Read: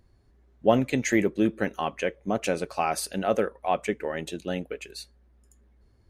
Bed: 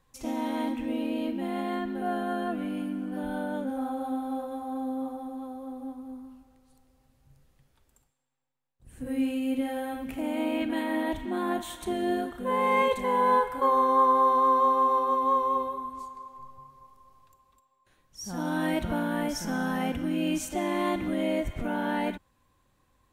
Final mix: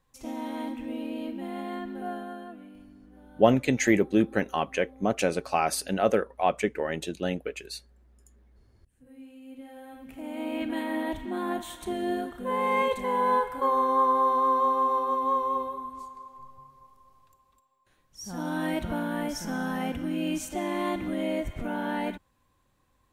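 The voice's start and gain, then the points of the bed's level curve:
2.75 s, +1.0 dB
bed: 2.06 s -4 dB
2.92 s -20 dB
9.27 s -20 dB
10.66 s -1.5 dB

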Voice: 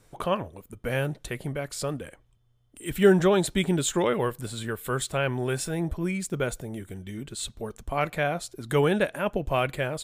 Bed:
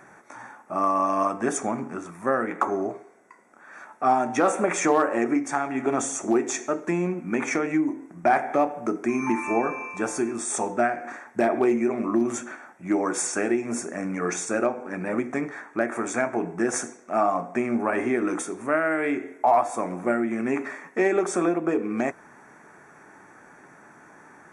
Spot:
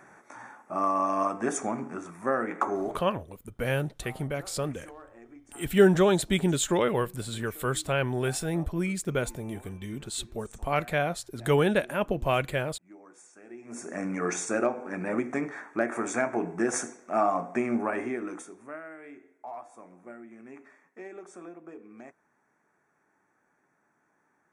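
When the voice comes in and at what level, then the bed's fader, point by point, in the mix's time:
2.75 s, -0.5 dB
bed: 2.97 s -3.5 dB
3.22 s -27.5 dB
13.41 s -27.5 dB
13.94 s -2.5 dB
17.74 s -2.5 dB
19.00 s -21.5 dB

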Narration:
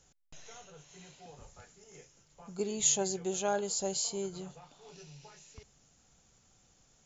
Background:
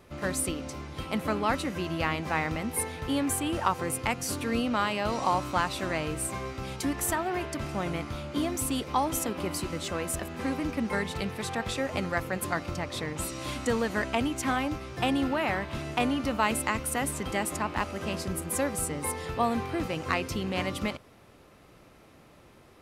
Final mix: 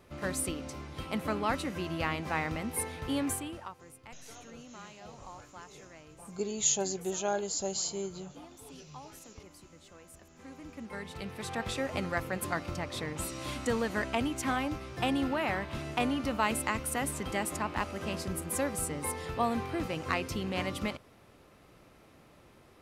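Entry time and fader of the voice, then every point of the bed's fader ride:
3.80 s, 0.0 dB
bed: 3.30 s -3.5 dB
3.79 s -22 dB
10.19 s -22 dB
11.61 s -3 dB

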